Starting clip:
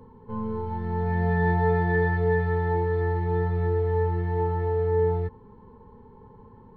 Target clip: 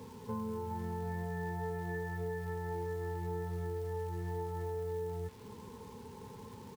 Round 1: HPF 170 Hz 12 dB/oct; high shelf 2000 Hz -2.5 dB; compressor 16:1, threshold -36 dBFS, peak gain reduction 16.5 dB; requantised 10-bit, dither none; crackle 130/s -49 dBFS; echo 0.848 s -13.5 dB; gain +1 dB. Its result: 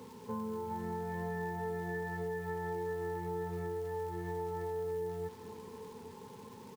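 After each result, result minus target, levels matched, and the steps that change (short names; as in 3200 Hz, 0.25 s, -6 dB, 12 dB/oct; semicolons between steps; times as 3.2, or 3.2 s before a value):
echo-to-direct +9.5 dB; 125 Hz band -5.0 dB
change: echo 0.848 s -23 dB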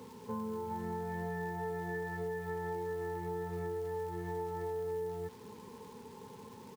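125 Hz band -5.5 dB
change: HPF 82 Hz 12 dB/oct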